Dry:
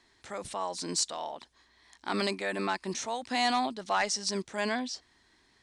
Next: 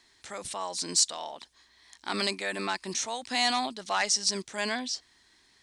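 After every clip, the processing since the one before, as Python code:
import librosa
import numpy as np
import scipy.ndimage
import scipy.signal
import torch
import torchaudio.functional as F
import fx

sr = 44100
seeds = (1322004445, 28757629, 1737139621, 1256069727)

y = fx.high_shelf(x, sr, hz=2100.0, db=9.5)
y = y * librosa.db_to_amplitude(-2.5)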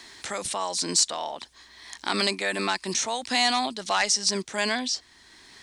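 y = fx.band_squash(x, sr, depth_pct=40)
y = y * librosa.db_to_amplitude(4.5)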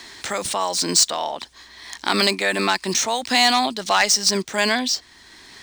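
y = scipy.signal.medfilt(x, 3)
y = y * librosa.db_to_amplitude(6.5)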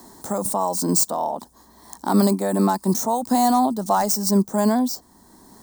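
y = fx.curve_eq(x, sr, hz=(120.0, 200.0, 360.0, 940.0, 2500.0, 14000.0), db=(0, 10, 1, 2, -28, 11))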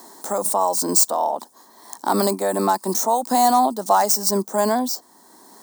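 y = scipy.signal.sosfilt(scipy.signal.butter(2, 370.0, 'highpass', fs=sr, output='sos'), x)
y = y * librosa.db_to_amplitude(3.5)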